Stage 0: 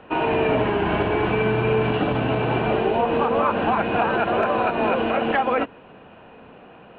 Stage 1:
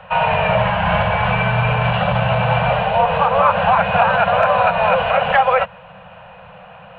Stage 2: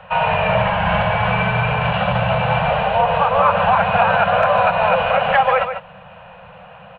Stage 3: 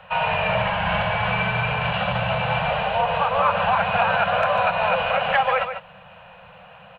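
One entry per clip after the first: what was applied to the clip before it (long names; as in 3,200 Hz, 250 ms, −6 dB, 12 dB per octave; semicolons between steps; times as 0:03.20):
Chebyshev band-stop filter 190–510 Hz, order 4; level +8 dB
single-tap delay 145 ms −9 dB; level −1 dB
high-shelf EQ 2,100 Hz +8 dB; level −6.5 dB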